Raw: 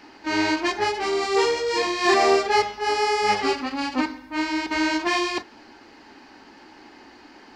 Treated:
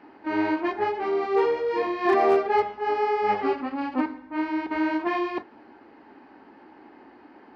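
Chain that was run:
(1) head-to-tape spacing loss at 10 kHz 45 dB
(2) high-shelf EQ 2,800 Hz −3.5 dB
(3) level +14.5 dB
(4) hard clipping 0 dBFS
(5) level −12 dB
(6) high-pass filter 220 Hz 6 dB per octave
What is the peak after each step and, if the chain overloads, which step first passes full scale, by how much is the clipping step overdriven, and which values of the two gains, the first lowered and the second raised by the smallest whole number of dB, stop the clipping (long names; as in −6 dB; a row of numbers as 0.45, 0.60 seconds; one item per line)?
−11.5, −11.5, +3.0, 0.0, −12.0, −11.0 dBFS
step 3, 3.0 dB
step 3 +11.5 dB, step 5 −9 dB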